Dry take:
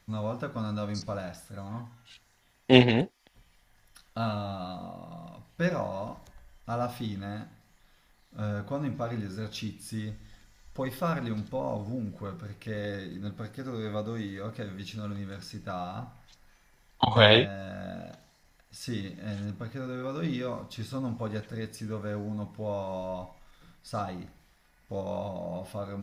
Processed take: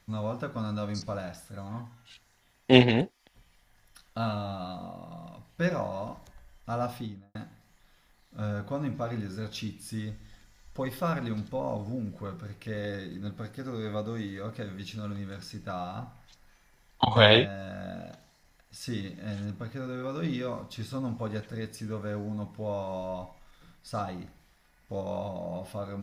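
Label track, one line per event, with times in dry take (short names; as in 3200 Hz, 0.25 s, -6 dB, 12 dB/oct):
6.890000	7.350000	studio fade out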